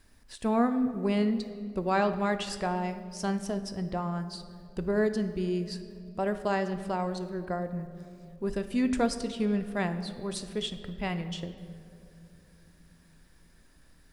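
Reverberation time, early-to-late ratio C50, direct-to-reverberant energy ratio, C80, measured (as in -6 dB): 2.8 s, 11.0 dB, 8.5 dB, 12.5 dB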